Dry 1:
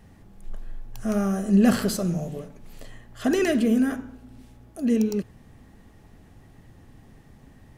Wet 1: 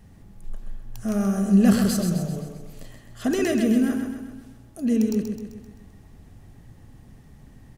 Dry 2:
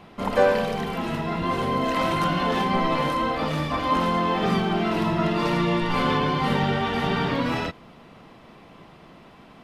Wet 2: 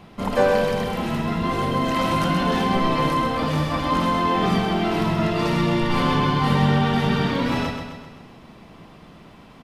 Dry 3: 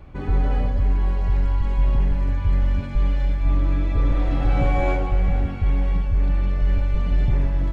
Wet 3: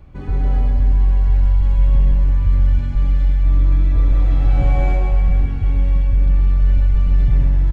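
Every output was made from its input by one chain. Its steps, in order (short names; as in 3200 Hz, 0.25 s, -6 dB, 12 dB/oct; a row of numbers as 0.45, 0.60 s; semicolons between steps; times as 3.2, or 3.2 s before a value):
tone controls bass +5 dB, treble +4 dB; on a send: feedback echo 0.13 s, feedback 52%, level -6.5 dB; on the sum: normalise peaks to -6 dBFS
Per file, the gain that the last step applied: -3.0, -0.5, -4.0 dB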